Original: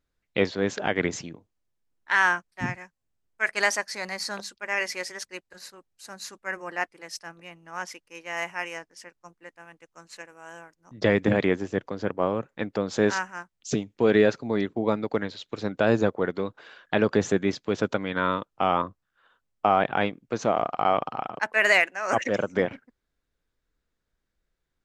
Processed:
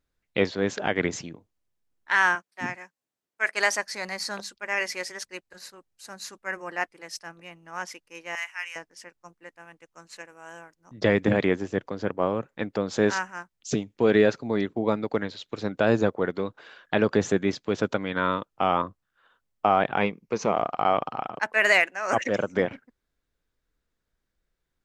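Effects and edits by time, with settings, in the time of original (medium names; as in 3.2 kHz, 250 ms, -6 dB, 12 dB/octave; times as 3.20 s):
2.35–3.71 s: high-pass 240 Hz
8.35–8.76 s: Chebyshev high-pass 1.8 kHz
19.98–20.54 s: rippled EQ curve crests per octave 0.82, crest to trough 7 dB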